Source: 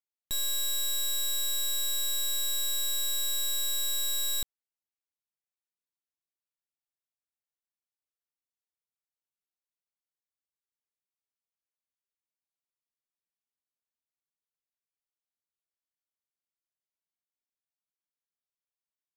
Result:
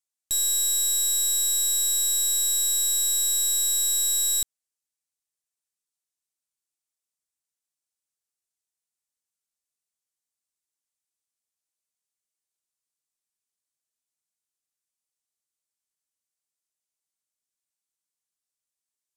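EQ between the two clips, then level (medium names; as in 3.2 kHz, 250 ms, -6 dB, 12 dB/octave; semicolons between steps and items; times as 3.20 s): peaking EQ 8.1 kHz +14 dB 1.6 oct; -2.5 dB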